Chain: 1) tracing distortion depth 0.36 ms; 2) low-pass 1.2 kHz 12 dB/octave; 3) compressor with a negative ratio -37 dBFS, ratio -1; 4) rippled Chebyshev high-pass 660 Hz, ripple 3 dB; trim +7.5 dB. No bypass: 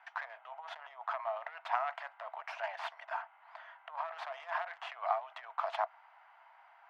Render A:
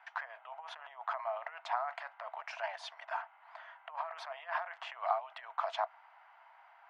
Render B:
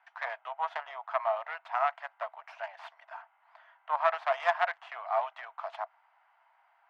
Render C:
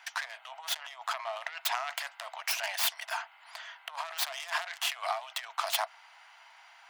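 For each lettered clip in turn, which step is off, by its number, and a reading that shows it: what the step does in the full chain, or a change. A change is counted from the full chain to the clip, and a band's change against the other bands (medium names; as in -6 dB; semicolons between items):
1, 4 kHz band +2.5 dB; 3, momentary loudness spread change +4 LU; 2, 4 kHz band +17.5 dB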